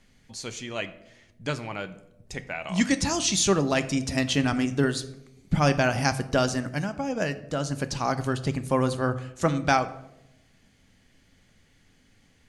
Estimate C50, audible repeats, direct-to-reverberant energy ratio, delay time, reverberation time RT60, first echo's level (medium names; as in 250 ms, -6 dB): 15.0 dB, no echo, 10.0 dB, no echo, 0.90 s, no echo